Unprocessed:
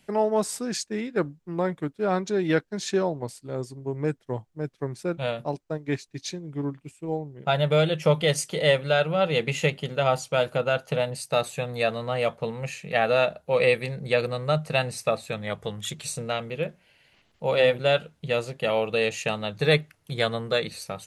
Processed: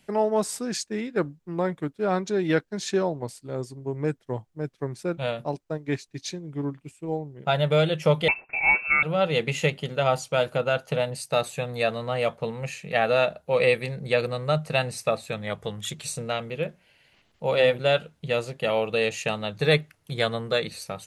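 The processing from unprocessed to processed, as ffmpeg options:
-filter_complex "[0:a]asettb=1/sr,asplit=3[s0][s1][s2];[s0]atrim=end=8.284[s3];[s1]atrim=start=8.28:end=9.03,asetpts=PTS-STARTPTS,afade=t=in:d=0.004:c=qsin,afade=t=out:st=0.746:d=0.004:c=qsin,lowpass=f=2400:t=q:w=0.5098,lowpass=f=2400:t=q:w=0.6013,lowpass=f=2400:t=q:w=0.9,lowpass=f=2400:t=q:w=2.563,afreqshift=-2800[s4];[s2]atrim=start=9.026[s5];[s3][s4]acrossfade=d=0.004:c1=hsin:c2=qsin[s6];[s6][s5]acrossfade=d=0.004:c1=qsin:c2=hsin"

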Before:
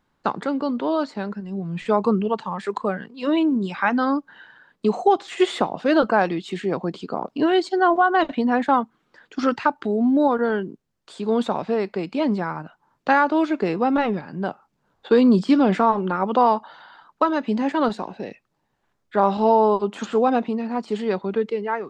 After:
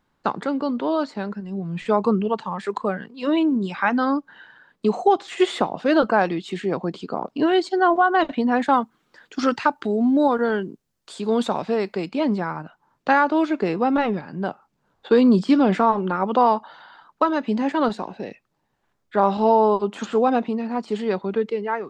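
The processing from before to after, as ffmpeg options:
-filter_complex "[0:a]asettb=1/sr,asplit=3[s0][s1][s2];[s0]atrim=end=8.564[s3];[s1]atrim=start=8.56:end=12.09,asetpts=PTS-STARTPTS,afade=t=in:d=0.004:c=qsin,afade=t=out:st=3.526:d=0.004:c=qsin,highshelf=f=4300:g=8[s4];[s2]atrim=start=12.086[s5];[s3][s4]acrossfade=d=0.004:c1=hsin:c2=qsin[s6];[s6][s5]acrossfade=d=0.004:c1=qsin:c2=hsin"

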